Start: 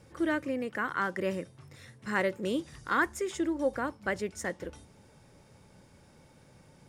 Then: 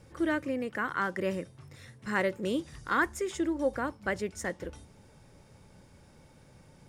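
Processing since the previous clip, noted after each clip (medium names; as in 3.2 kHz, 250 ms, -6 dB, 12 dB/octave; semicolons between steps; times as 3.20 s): bass shelf 63 Hz +8 dB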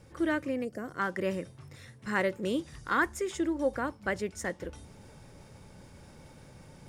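time-frequency box 0.65–0.99 s, 770–4300 Hz -15 dB; reverse; upward compressor, threshold -44 dBFS; reverse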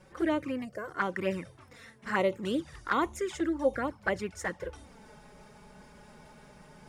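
peaking EQ 1.2 kHz +7 dB 2.6 oct; touch-sensitive flanger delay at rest 5.7 ms, full sweep at -21.5 dBFS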